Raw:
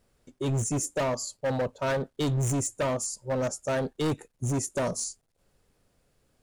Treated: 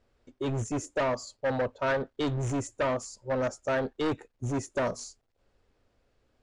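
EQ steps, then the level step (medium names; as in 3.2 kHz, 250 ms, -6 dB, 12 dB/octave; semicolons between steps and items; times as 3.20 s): peaking EQ 160 Hz -14.5 dB 0.35 oct; dynamic bell 1.6 kHz, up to +4 dB, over -43 dBFS, Q 1.3; distance through air 120 m; 0.0 dB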